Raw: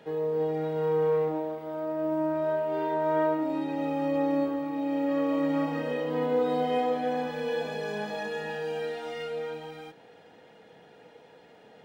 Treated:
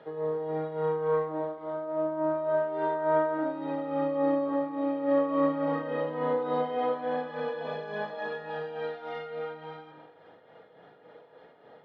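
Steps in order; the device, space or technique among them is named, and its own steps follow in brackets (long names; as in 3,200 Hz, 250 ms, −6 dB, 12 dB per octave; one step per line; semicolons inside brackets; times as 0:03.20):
combo amplifier with spring reverb and tremolo (spring reverb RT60 1.3 s, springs 39 ms, chirp 80 ms, DRR 7 dB; amplitude tremolo 3.5 Hz, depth 55%; loudspeaker in its box 90–3,800 Hz, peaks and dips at 210 Hz −7 dB, 590 Hz +5 dB, 1,200 Hz +7 dB, 2,600 Hz −9 dB)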